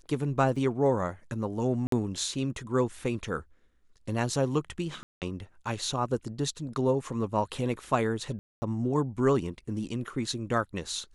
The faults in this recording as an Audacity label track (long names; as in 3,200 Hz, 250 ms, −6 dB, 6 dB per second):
0.560000	0.560000	drop-out 4.3 ms
1.870000	1.920000	drop-out 53 ms
5.030000	5.220000	drop-out 188 ms
8.390000	8.620000	drop-out 230 ms